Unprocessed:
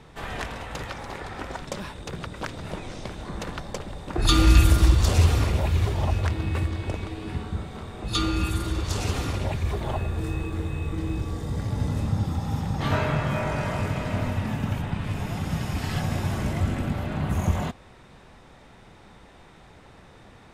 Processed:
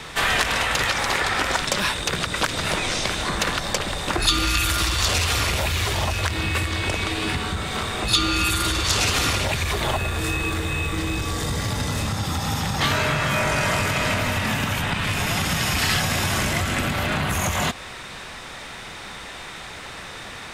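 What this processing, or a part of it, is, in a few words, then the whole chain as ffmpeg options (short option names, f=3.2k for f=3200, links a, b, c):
mastering chain: -filter_complex "[0:a]equalizer=f=850:t=o:w=0.39:g=-2.5,acrossover=split=500|4600[a][b][c];[a]acompressor=threshold=-23dB:ratio=4[d];[b]acompressor=threshold=-33dB:ratio=4[e];[c]acompressor=threshold=-43dB:ratio=4[f];[d][e][f]amix=inputs=3:normalize=0,acompressor=threshold=-30dB:ratio=2.5,asoftclip=type=tanh:threshold=-23dB,tiltshelf=f=820:g=-8,alimiter=level_in=20dB:limit=-1dB:release=50:level=0:latency=1,volume=-6dB"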